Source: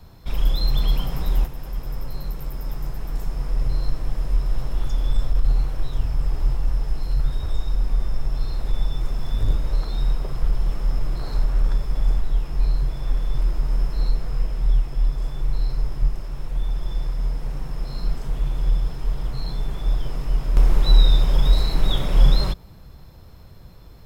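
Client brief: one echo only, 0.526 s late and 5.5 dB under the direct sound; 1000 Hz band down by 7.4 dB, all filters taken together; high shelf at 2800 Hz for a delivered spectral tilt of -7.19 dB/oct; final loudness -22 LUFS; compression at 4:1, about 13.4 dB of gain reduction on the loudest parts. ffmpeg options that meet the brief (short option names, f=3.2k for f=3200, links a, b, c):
-af "equalizer=f=1k:t=o:g=-8.5,highshelf=f=2.8k:g=-9,acompressor=threshold=-25dB:ratio=4,aecho=1:1:526:0.531,volume=11dB"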